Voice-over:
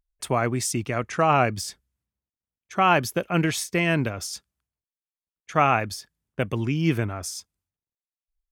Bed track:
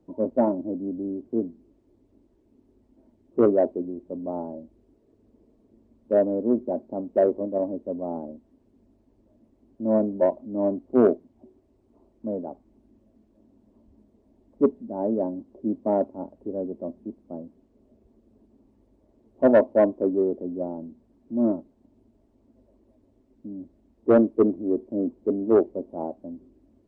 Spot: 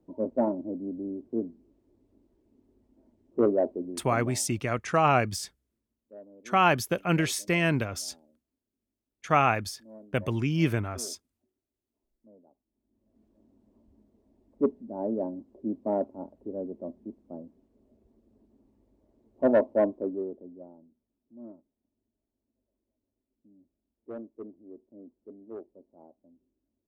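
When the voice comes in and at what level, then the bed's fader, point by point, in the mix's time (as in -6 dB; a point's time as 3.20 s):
3.75 s, -2.5 dB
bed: 4.23 s -4.5 dB
4.45 s -27 dB
12.67 s -27 dB
13.22 s -5 dB
19.88 s -5 dB
20.99 s -23 dB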